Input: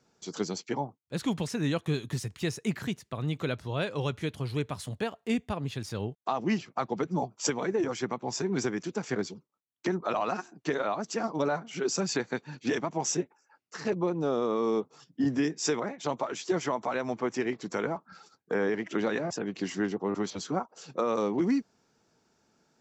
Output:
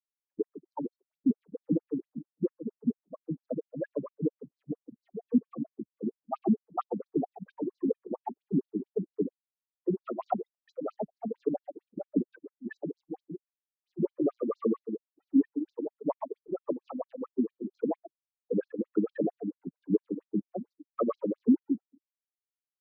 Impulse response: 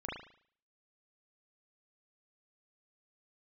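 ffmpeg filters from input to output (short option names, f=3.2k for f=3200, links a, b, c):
-filter_complex "[0:a]bandreject=f=390:w=12,asplit=2[a][b];[b]adelay=140,lowpass=f=1.9k:p=1,volume=-6dB,asplit=2[c][d];[d]adelay=140,lowpass=f=1.9k:p=1,volume=0.39,asplit=2[e][f];[f]adelay=140,lowpass=f=1.9k:p=1,volume=0.39,asplit=2[g][h];[h]adelay=140,lowpass=f=1.9k:p=1,volume=0.39,asplit=2[i][j];[j]adelay=140,lowpass=f=1.9k:p=1,volume=0.39[k];[a][c][e][g][i][k]amix=inputs=6:normalize=0,acrossover=split=2100[l][m];[l]acontrast=27[n];[n][m]amix=inputs=2:normalize=0,equalizer=f=300:w=0.86:g=4,asplit=2[o][p];[1:a]atrim=start_sample=2205[q];[p][q]afir=irnorm=-1:irlink=0,volume=-22dB[r];[o][r]amix=inputs=2:normalize=0,afftfilt=real='re*gte(hypot(re,im),0.2)':imag='im*gte(hypot(re,im),0.2)':win_size=1024:overlap=0.75,tremolo=f=2.8:d=0.45,adynamicsmooth=sensitivity=7.5:basefreq=4.7k,afftfilt=real='re*between(b*sr/1024,210*pow(5700/210,0.5+0.5*sin(2*PI*4.4*pts/sr))/1.41,210*pow(5700/210,0.5+0.5*sin(2*PI*4.4*pts/sr))*1.41)':imag='im*between(b*sr/1024,210*pow(5700/210,0.5+0.5*sin(2*PI*4.4*pts/sr))/1.41,210*pow(5700/210,0.5+0.5*sin(2*PI*4.4*pts/sr))*1.41)':win_size=1024:overlap=0.75"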